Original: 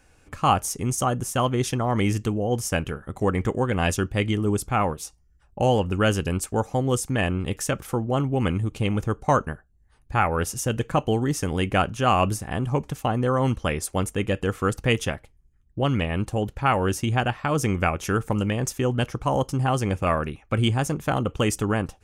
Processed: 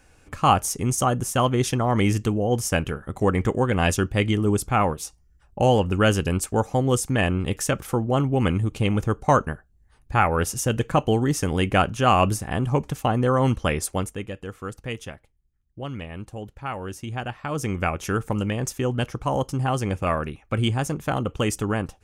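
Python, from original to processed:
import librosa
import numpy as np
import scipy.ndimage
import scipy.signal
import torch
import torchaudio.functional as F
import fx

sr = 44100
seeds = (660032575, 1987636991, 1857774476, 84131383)

y = fx.gain(x, sr, db=fx.line((13.87, 2.0), (14.33, -10.0), (16.9, -10.0), (17.94, -1.0)))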